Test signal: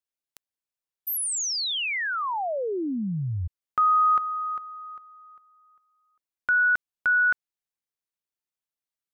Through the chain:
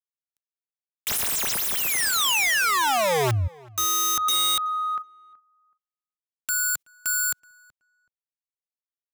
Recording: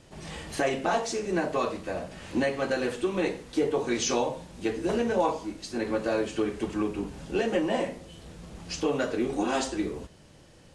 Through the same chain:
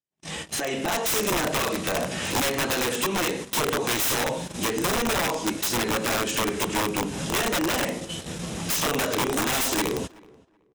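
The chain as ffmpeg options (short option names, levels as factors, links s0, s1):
-filter_complex "[0:a]highpass=120,lowshelf=f=250:g=3.5,asplit=2[s0][s1];[s1]asoftclip=type=tanh:threshold=0.0282,volume=0.473[s2];[s0][s2]amix=inputs=2:normalize=0,acompressor=threshold=0.0447:ratio=8:attack=1.5:release=258:knee=6:detection=rms,highshelf=f=2200:g=9,dynaudnorm=f=530:g=3:m=2.51,agate=range=0.00316:threshold=0.0224:ratio=16:release=78:detection=rms,aeval=exprs='(mod(8.91*val(0)+1,2)-1)/8.91':c=same,bandreject=f=4500:w=10,asplit=2[s3][s4];[s4]adelay=376,lowpass=f=2100:p=1,volume=0.0668,asplit=2[s5][s6];[s6]adelay=376,lowpass=f=2100:p=1,volume=0.22[s7];[s3][s5][s7]amix=inputs=3:normalize=0"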